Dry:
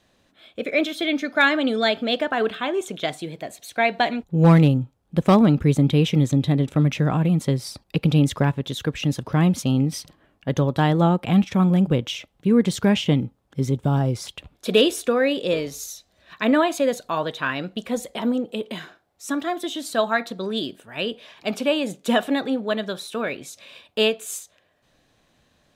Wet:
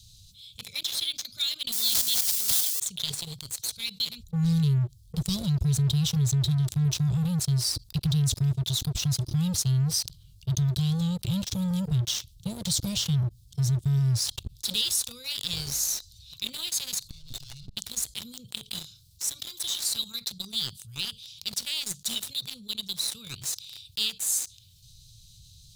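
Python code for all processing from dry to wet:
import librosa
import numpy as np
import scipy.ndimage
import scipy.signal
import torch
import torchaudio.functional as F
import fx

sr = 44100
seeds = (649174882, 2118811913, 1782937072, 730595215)

y = fx.chain(x, sr, fx.crossing_spikes(level_db=-20.0),
    fx.sustainer(db_per_s=29.0), at=(1.72, 2.8))
y = fx.chain(y, sr, fx.lower_of_two(delay_ms=1.4),
    fx.high_shelf(hz=9100.0, db=-7.5),
    fx.level_steps(step_db=21), at=(17.1, 17.76))
y = scipy.signal.sosfilt(scipy.signal.ellip(3, 1.0, 40, [120.0, 4200.0], 'bandstop', fs=sr, output='sos'), y)
y = fx.leveller(y, sr, passes=3)
y = fx.env_flatten(y, sr, amount_pct=50)
y = F.gain(torch.from_numpy(y), -8.5).numpy()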